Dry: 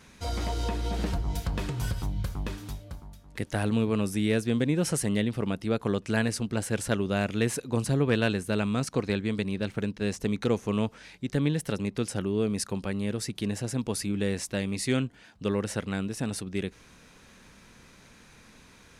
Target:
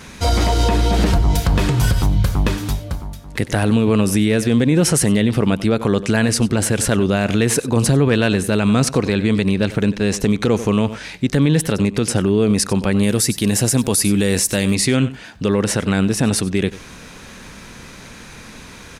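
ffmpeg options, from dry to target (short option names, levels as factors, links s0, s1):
-filter_complex "[0:a]asettb=1/sr,asplit=3[s0][s1][s2];[s0]atrim=end=13.034[s3];[s1]atrim=start=13.03:end=14.75,asetpts=PTS-STARTPTS,afade=t=in:d=0.004:c=qsin,afade=t=out:st=1.716:d=0.004:c=qsin,aemphasis=mode=production:type=50fm[s4];[s2]atrim=start=14.746[s5];[s3][s4]acrossfade=d=0.004:c1=hsin:c2=qsin[s6];[s6][s5]acrossfade=d=0.004:c1=qsin:c2=hsin,asplit=2[s7][s8];[s8]aecho=0:1:94:0.106[s9];[s7][s9]amix=inputs=2:normalize=0,alimiter=level_in=12.6:limit=0.891:release=50:level=0:latency=1,volume=0.501"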